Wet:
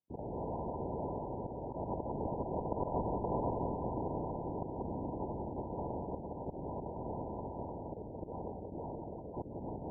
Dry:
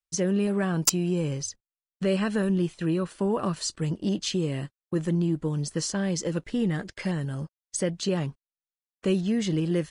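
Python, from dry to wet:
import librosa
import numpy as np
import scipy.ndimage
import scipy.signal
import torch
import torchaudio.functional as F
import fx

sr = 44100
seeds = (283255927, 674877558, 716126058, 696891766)

p1 = fx.reverse_delay_fb(x, sr, ms=366, feedback_pct=58, wet_db=-13.5)
p2 = fx.doppler_pass(p1, sr, speed_mps=51, closest_m=7.7, pass_at_s=3.01)
p3 = fx.low_shelf(p2, sr, hz=300.0, db=-11.0)
p4 = p3 + fx.echo_single(p3, sr, ms=503, db=-8.0, dry=0)
p5 = fx.lpc_vocoder(p4, sr, seeds[0], excitation='whisper', order=10)
p6 = scipy.signal.sosfilt(scipy.signal.butter(2, 80.0, 'highpass', fs=sr, output='sos'), p5)
p7 = fx.cheby_harmonics(p6, sr, harmonics=(6,), levels_db=(-20,), full_scale_db=-20.0)
p8 = fx.auto_swell(p7, sr, attack_ms=285.0)
p9 = fx.brickwall_lowpass(p8, sr, high_hz=1000.0)
p10 = p9 + 10.0 ** (-10.5 / 20.0) * np.pad(p9, (int(178 * sr / 1000.0), 0))[:len(p9)]
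p11 = fx.spectral_comp(p10, sr, ratio=4.0)
y = p11 * librosa.db_to_amplitude(8.0)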